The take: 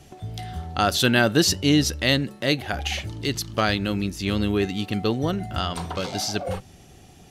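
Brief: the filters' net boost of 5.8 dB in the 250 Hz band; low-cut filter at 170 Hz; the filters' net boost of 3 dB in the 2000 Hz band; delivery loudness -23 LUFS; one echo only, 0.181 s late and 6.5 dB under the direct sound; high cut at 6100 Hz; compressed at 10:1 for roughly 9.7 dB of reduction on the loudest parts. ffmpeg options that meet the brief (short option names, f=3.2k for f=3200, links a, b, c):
-af "highpass=170,lowpass=6.1k,equalizer=f=250:t=o:g=8.5,equalizer=f=2k:t=o:g=4,acompressor=threshold=-19dB:ratio=10,aecho=1:1:181:0.473,volume=2dB"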